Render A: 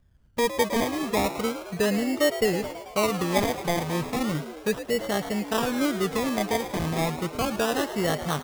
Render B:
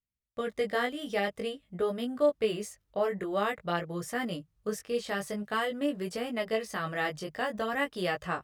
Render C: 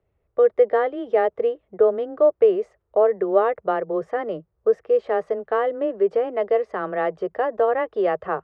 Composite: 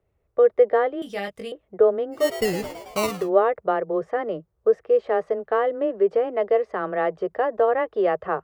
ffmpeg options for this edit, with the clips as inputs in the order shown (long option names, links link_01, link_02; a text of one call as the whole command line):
ffmpeg -i take0.wav -i take1.wav -i take2.wav -filter_complex "[2:a]asplit=3[link_01][link_02][link_03];[link_01]atrim=end=1.022[link_04];[1:a]atrim=start=1.018:end=1.522[link_05];[link_02]atrim=start=1.518:end=2.35[link_06];[0:a]atrim=start=2.11:end=3.3[link_07];[link_03]atrim=start=3.06[link_08];[link_04][link_05]acrossfade=duration=0.004:curve1=hsin:curve2=hsin[link_09];[link_09][link_06]acrossfade=duration=0.004:curve1=hsin:curve2=hsin[link_10];[link_10][link_07]acrossfade=duration=0.24:curve1=tri:curve2=tri[link_11];[link_11][link_08]acrossfade=duration=0.24:curve1=tri:curve2=tri" out.wav